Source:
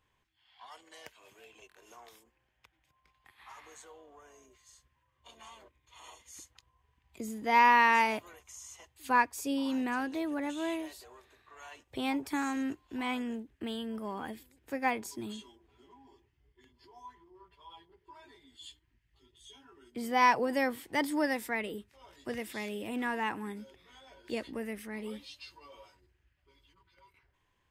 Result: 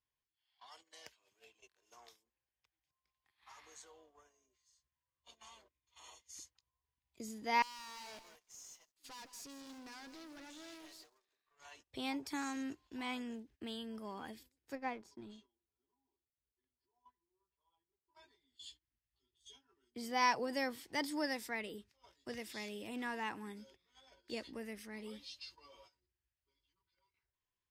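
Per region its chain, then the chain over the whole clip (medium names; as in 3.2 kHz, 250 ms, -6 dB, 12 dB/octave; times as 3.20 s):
7.62–11.65 s: high-pass 250 Hz + valve stage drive 44 dB, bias 0.7 + bit-crushed delay 166 ms, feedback 35%, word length 9-bit, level -9 dB
14.75–18.15 s: companding laws mixed up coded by A + low-pass 1.3 kHz 6 dB/octave
whole clip: gate -55 dBFS, range -13 dB; peaking EQ 5.1 kHz +10 dB 1 oct; trim -8 dB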